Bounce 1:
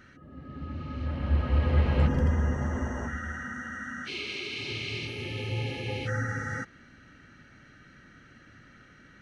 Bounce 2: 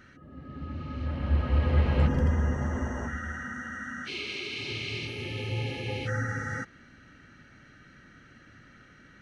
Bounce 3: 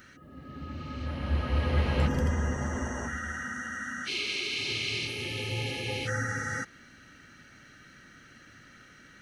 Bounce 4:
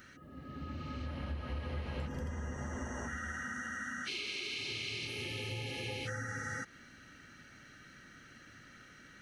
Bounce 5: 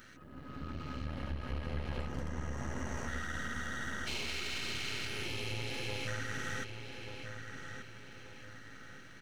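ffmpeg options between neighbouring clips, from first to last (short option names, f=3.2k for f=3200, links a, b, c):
-af anull
-af "crystalizer=i=2.5:c=0,lowshelf=f=180:g=-4"
-af "acompressor=threshold=-34dB:ratio=6,volume=-2.5dB"
-filter_complex "[0:a]aeval=exprs='if(lt(val(0),0),0.251*val(0),val(0))':c=same,asplit=2[a][b];[b]adelay=1183,lowpass=f=4.4k:p=1,volume=-7dB,asplit=2[c][d];[d]adelay=1183,lowpass=f=4.4k:p=1,volume=0.41,asplit=2[e][f];[f]adelay=1183,lowpass=f=4.4k:p=1,volume=0.41,asplit=2[g][h];[h]adelay=1183,lowpass=f=4.4k:p=1,volume=0.41,asplit=2[i][j];[j]adelay=1183,lowpass=f=4.4k:p=1,volume=0.41[k];[a][c][e][g][i][k]amix=inputs=6:normalize=0,volume=3.5dB"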